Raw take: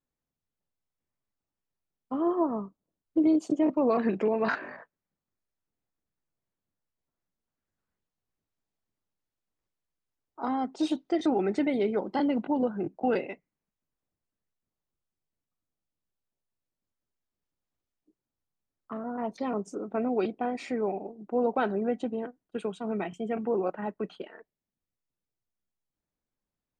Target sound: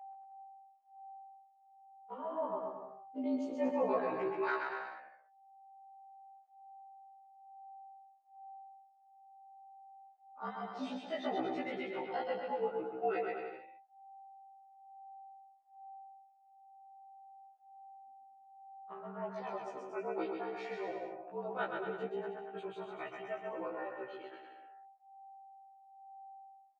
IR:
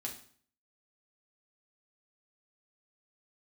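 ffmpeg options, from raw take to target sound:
-af "agate=range=0.251:threshold=0.00398:ratio=16:detection=peak,flanger=delay=2.5:depth=3:regen=67:speed=0.12:shape=triangular,aeval=exprs='val(0)+0.00251*sin(2*PI*830*n/s)':c=same,afreqshift=-50,aphaser=in_gain=1:out_gain=1:delay=2.3:decay=0.32:speed=0.27:type=sinusoidal,highpass=550,lowpass=3600,aecho=1:1:130|234|317.2|383.8|437:0.631|0.398|0.251|0.158|0.1,afftfilt=real='re*1.73*eq(mod(b,3),0)':imag='im*1.73*eq(mod(b,3),0)':win_size=2048:overlap=0.75,volume=1.12"

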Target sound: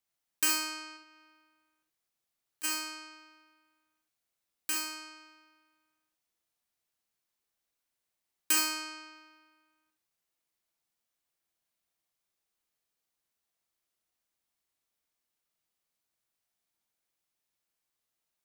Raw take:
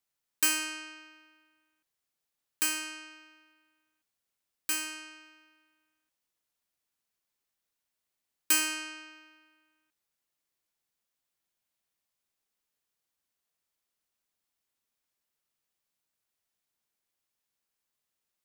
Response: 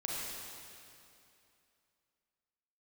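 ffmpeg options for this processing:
-filter_complex "[0:a]asplit=3[s0][s1][s2];[s0]afade=t=out:st=0.96:d=0.02[s3];[s1]acompressor=threshold=0.002:ratio=4,afade=t=in:st=0.96:d=0.02,afade=t=out:st=2.63:d=0.02[s4];[s2]afade=t=in:st=2.63:d=0.02[s5];[s3][s4][s5]amix=inputs=3:normalize=0[s6];[1:a]atrim=start_sample=2205,atrim=end_sample=3528[s7];[s6][s7]afir=irnorm=-1:irlink=0"

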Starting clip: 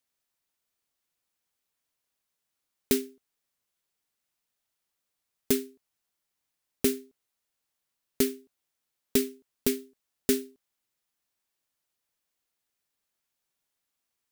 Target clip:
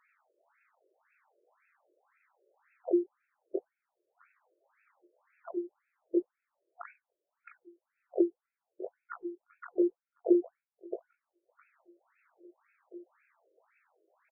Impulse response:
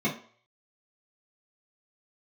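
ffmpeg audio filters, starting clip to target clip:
-filter_complex "[0:a]afftfilt=real='real(if(between(b,1,1008),(2*floor((b-1)/24)+1)*24-b,b),0)':imag='imag(if(between(b,1,1008),(2*floor((b-1)/24)+1)*24-b,b),0)*if(between(b,1,1008),-1,1)':win_size=2048:overlap=0.75,aemphasis=mode=reproduction:type=riaa,agate=range=0.0891:threshold=0.00501:ratio=16:detection=peak,equalizer=f=2800:w=1.5:g=14.5,asetrate=60591,aresample=44100,atempo=0.727827,flanger=delay=19.5:depth=4:speed=0.87,acompressor=mode=upward:threshold=0.0398:ratio=2.5,asplit=2[s0][s1];[s1]adelay=663,lowpass=f=1000:p=1,volume=0.668,asplit=2[s2][s3];[s3]adelay=663,lowpass=f=1000:p=1,volume=0.48,asplit=2[s4][s5];[s5]adelay=663,lowpass=f=1000:p=1,volume=0.48,asplit=2[s6][s7];[s7]adelay=663,lowpass=f=1000:p=1,volume=0.48,asplit=2[s8][s9];[s9]adelay=663,lowpass=f=1000:p=1,volume=0.48,asplit=2[s10][s11];[s11]adelay=663,lowpass=f=1000:p=1,volume=0.48[s12];[s2][s4][s6][s8][s10][s12]amix=inputs=6:normalize=0[s13];[s0][s13]amix=inputs=2:normalize=0,aresample=11025,aresample=44100,afftfilt=real='re*between(b*sr/1024,430*pow(1900/430,0.5+0.5*sin(2*PI*1.9*pts/sr))/1.41,430*pow(1900/430,0.5+0.5*sin(2*PI*1.9*pts/sr))*1.41)':imag='im*between(b*sr/1024,430*pow(1900/430,0.5+0.5*sin(2*PI*1.9*pts/sr))/1.41,430*pow(1900/430,0.5+0.5*sin(2*PI*1.9*pts/sr))*1.41)':win_size=1024:overlap=0.75,volume=1.33"

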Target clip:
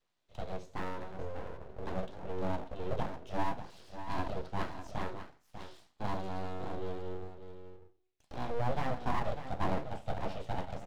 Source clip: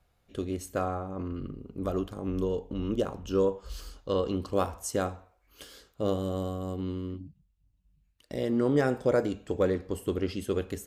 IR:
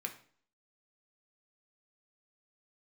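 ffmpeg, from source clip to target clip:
-filter_complex "[0:a]highpass=f=130:w=0.5412,highpass=f=130:w=1.3066,equalizer=f=640:t=q:w=4:g=-7,equalizer=f=1000:t=q:w=4:g=-9,equalizer=f=1800:t=q:w=4:g=-7,equalizer=f=2900:t=q:w=4:g=-7,lowpass=f=6100:w=0.5412,lowpass=f=6100:w=1.3066,acrossover=split=3200[s0][s1];[s1]acompressor=threshold=0.00126:ratio=4:attack=1:release=60[s2];[s0][s2]amix=inputs=2:normalize=0,aecho=1:1:595:0.299[s3];[1:a]atrim=start_sample=2205,asetrate=66150,aresample=44100[s4];[s3][s4]afir=irnorm=-1:irlink=0,aeval=exprs='abs(val(0))':c=same,volume=1.33"

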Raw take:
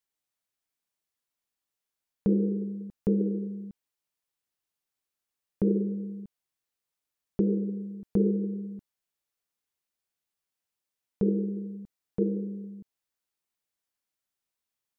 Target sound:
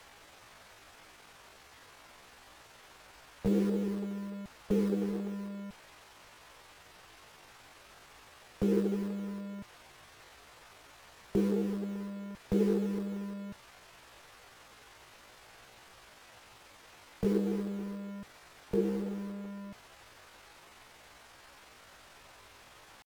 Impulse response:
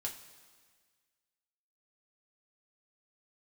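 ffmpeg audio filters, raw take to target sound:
-filter_complex "[0:a]aeval=exprs='val(0)+0.5*0.0119*sgn(val(0))':c=same,atempo=0.65,acrossover=split=160[s0][s1];[s0]acrusher=bits=3:mode=log:mix=0:aa=0.000001[s2];[s1]bandpass=f=860:t=q:w=0.53:csg=0[s3];[s2][s3]amix=inputs=2:normalize=0"

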